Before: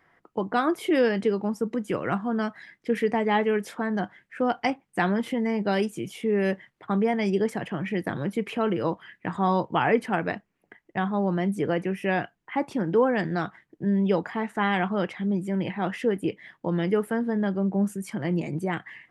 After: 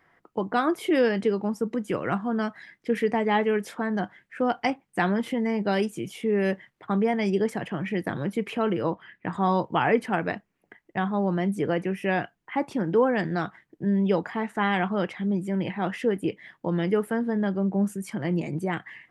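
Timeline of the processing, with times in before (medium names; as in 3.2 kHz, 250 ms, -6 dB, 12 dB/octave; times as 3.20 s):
8.81–9.33 s: low-pass 3.1 kHz 6 dB/octave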